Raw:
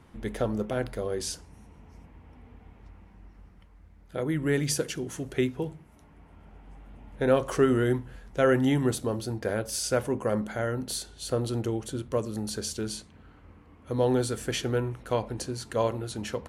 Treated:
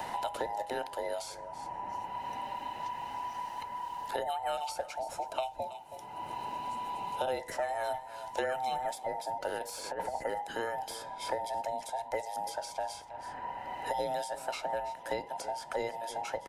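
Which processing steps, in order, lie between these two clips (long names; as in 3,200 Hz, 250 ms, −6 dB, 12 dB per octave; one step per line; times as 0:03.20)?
frequency inversion band by band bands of 1,000 Hz
0:05.02–0:07.41: parametric band 1,800 Hz −12 dB 0.22 octaves
0:09.57–0:10.22: compressor whose output falls as the input rises −30 dBFS, ratio −0.5
single-tap delay 322 ms −20 dB
multiband upward and downward compressor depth 100%
level −7 dB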